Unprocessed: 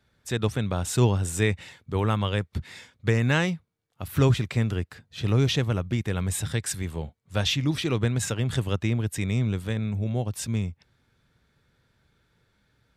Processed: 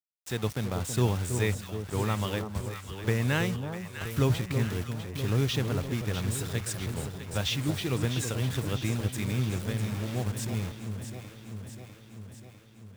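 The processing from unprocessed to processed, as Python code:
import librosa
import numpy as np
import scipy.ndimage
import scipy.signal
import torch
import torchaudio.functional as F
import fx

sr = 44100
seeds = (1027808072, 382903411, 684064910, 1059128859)

y = fx.quant_dither(x, sr, seeds[0], bits=6, dither='none')
y = fx.echo_alternate(y, sr, ms=325, hz=1100.0, feedback_pct=78, wet_db=-7.0)
y = y * 10.0 ** (-5.0 / 20.0)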